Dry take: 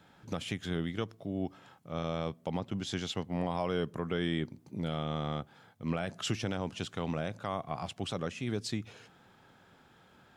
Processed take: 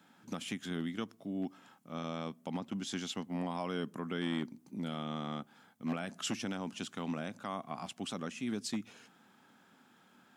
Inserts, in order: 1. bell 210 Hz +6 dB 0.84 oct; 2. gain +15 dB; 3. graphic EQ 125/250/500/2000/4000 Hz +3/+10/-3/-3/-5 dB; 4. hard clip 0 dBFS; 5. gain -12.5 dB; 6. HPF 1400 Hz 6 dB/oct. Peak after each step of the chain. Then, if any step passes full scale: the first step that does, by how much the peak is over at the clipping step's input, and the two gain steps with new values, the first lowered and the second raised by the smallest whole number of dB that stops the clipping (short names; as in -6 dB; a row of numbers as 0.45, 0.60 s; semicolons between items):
-18.0, -3.0, +3.5, 0.0, -12.5, -24.0 dBFS; step 3, 3.5 dB; step 2 +11 dB, step 5 -8.5 dB